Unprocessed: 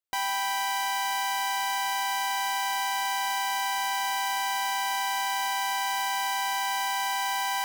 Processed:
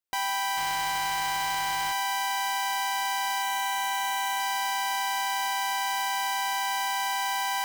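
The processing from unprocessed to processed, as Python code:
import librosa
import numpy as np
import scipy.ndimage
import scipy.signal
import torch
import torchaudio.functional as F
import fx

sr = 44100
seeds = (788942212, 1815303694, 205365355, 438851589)

y = fx.resample_bad(x, sr, factor=4, down='none', up='hold', at=(0.57, 1.92))
y = fx.notch(y, sr, hz=4900.0, q=7.9, at=(3.42, 4.4))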